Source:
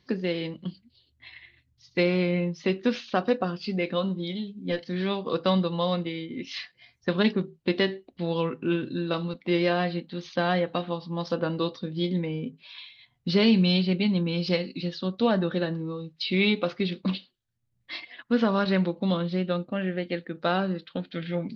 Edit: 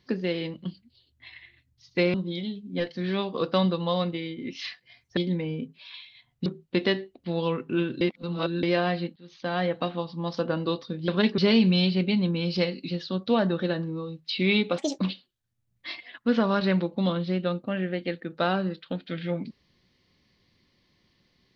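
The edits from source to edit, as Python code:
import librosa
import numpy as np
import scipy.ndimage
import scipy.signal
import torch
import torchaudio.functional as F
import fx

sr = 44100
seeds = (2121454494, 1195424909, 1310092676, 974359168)

y = fx.edit(x, sr, fx.cut(start_s=2.14, length_s=1.92),
    fx.swap(start_s=7.09, length_s=0.3, other_s=12.01, other_length_s=1.29),
    fx.reverse_span(start_s=8.94, length_s=0.62),
    fx.fade_in_from(start_s=10.09, length_s=0.58, floor_db=-22.5),
    fx.speed_span(start_s=16.7, length_s=0.34, speed=1.58), tone=tone)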